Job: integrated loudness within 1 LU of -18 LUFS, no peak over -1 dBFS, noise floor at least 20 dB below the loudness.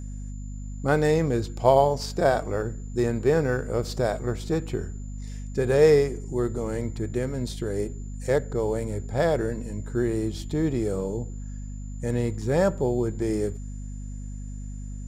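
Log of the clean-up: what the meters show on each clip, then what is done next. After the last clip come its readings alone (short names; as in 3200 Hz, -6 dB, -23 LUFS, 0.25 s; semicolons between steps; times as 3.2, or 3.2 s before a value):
hum 50 Hz; harmonics up to 250 Hz; hum level -32 dBFS; steady tone 7100 Hz; tone level -53 dBFS; loudness -25.5 LUFS; peak -5.5 dBFS; loudness target -18.0 LUFS
-> notches 50/100/150/200/250 Hz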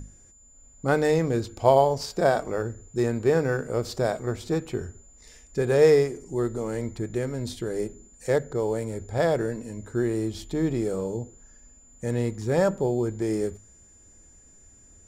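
hum none; steady tone 7100 Hz; tone level -53 dBFS
-> notch 7100 Hz, Q 30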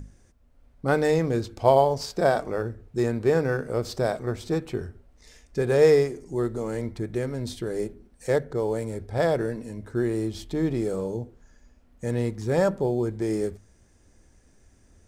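steady tone none; loudness -26.0 LUFS; peak -5.5 dBFS; loudness target -18.0 LUFS
-> gain +8 dB; limiter -1 dBFS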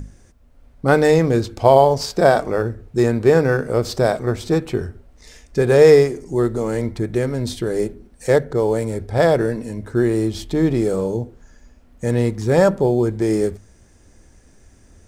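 loudness -18.0 LUFS; peak -1.0 dBFS; noise floor -51 dBFS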